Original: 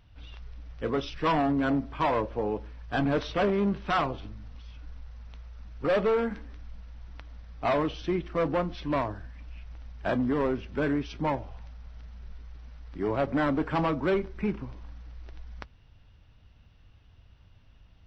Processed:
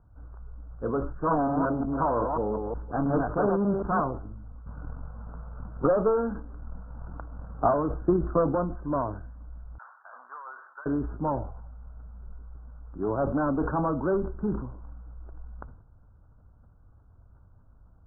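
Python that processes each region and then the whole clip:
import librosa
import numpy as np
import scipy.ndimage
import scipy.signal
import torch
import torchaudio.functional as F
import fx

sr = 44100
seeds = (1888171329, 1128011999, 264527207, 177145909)

y = fx.chain(x, sr, fx.reverse_delay(ms=181, wet_db=-4),
    fx.doppler_dist(depth_ms=0.35), at=(1.11, 4.0))
y = fx.chain(y, sr, fx.transient(attack_db=8, sustain_db=-2),
    fx.band_squash(depth_pct=40), at=(4.66, 8.55))
y = fx.chain(y, sr, fx.highpass(hz=1100.0, slope=24),
    fx.over_compress(threshold_db=-41.0, ratio=-1.0), at=(9.78, 10.86))
y = scipy.signal.sosfilt(scipy.signal.butter(16, 1500.0, 'lowpass', fs=sr, output='sos'), y)
y = fx.sustainer(y, sr, db_per_s=71.0)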